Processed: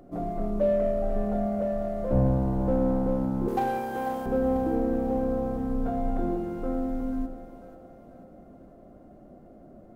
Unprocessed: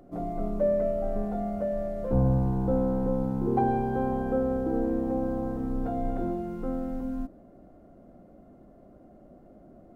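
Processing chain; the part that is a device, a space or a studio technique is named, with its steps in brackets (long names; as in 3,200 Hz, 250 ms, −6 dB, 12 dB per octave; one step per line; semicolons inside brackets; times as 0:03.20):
parallel distortion (in parallel at −12.5 dB: hard clipping −30.5 dBFS, distortion −6 dB)
0:03.48–0:04.26: on the sum: spectral tilt +4 dB per octave
echo with a time of its own for lows and highs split 410 Hz, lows 110 ms, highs 491 ms, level −10 dB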